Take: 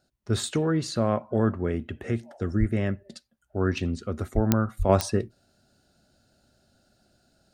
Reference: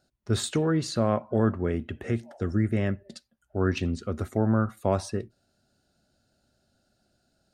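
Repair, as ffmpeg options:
-filter_complex "[0:a]adeclick=t=4,asplit=3[a][b][c];[a]afade=t=out:st=2.59:d=0.02[d];[b]highpass=f=140:w=0.5412,highpass=f=140:w=1.3066,afade=t=in:st=2.59:d=0.02,afade=t=out:st=2.71:d=0.02[e];[c]afade=t=in:st=2.71:d=0.02[f];[d][e][f]amix=inputs=3:normalize=0,asplit=3[g][h][i];[g]afade=t=out:st=4.34:d=0.02[j];[h]highpass=f=140:w=0.5412,highpass=f=140:w=1.3066,afade=t=in:st=4.34:d=0.02,afade=t=out:st=4.46:d=0.02[k];[i]afade=t=in:st=4.46:d=0.02[l];[j][k][l]amix=inputs=3:normalize=0,asplit=3[m][n][o];[m]afade=t=out:st=4.78:d=0.02[p];[n]highpass=f=140:w=0.5412,highpass=f=140:w=1.3066,afade=t=in:st=4.78:d=0.02,afade=t=out:st=4.9:d=0.02[q];[o]afade=t=in:st=4.9:d=0.02[r];[p][q][r]amix=inputs=3:normalize=0,asetnsamples=n=441:p=0,asendcmd='4.89 volume volume -5.5dB',volume=0dB"

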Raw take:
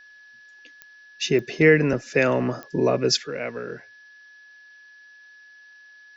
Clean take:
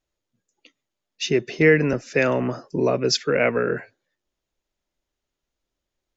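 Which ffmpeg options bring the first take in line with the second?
-af "adeclick=t=4,bandreject=f=1.7k:w=30,agate=range=-21dB:threshold=-42dB,asetnsamples=n=441:p=0,asendcmd='3.27 volume volume 10.5dB',volume=0dB"

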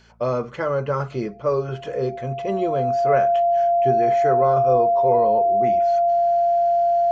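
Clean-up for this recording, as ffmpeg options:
-af "bandreject=f=56.9:t=h:w=4,bandreject=f=113.8:t=h:w=4,bandreject=f=170.7:t=h:w=4,bandreject=f=227.6:t=h:w=4,bandreject=f=690:w=30"

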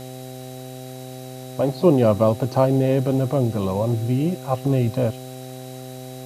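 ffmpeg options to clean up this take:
-af "bandreject=f=128.7:t=h:w=4,bandreject=f=257.4:t=h:w=4,bandreject=f=386.1:t=h:w=4,bandreject=f=514.8:t=h:w=4,bandreject=f=643.5:t=h:w=4,bandreject=f=772.2:t=h:w=4,bandreject=f=3.9k:w=30,afwtdn=0.0056"

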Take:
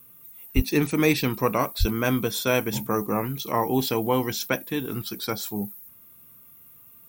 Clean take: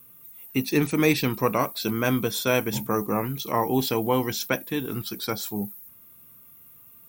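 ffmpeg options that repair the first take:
-filter_complex "[0:a]asplit=3[a][b][c];[a]afade=t=out:st=0.55:d=0.02[d];[b]highpass=f=140:w=0.5412,highpass=f=140:w=1.3066,afade=t=in:st=0.55:d=0.02,afade=t=out:st=0.67:d=0.02[e];[c]afade=t=in:st=0.67:d=0.02[f];[d][e][f]amix=inputs=3:normalize=0,asplit=3[g][h][i];[g]afade=t=out:st=1.79:d=0.02[j];[h]highpass=f=140:w=0.5412,highpass=f=140:w=1.3066,afade=t=in:st=1.79:d=0.02,afade=t=out:st=1.91:d=0.02[k];[i]afade=t=in:st=1.91:d=0.02[l];[j][k][l]amix=inputs=3:normalize=0"

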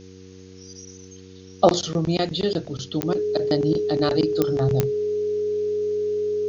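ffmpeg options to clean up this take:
-af "adeclick=t=4,bandreject=f=93.7:t=h:w=4,bandreject=f=187.4:t=h:w=4,bandreject=f=281.1:t=h:w=4,bandreject=f=374.8:t=h:w=4,bandreject=f=468.5:t=h:w=4,bandreject=f=420:w=30,afftdn=nr=26:nf=-44"

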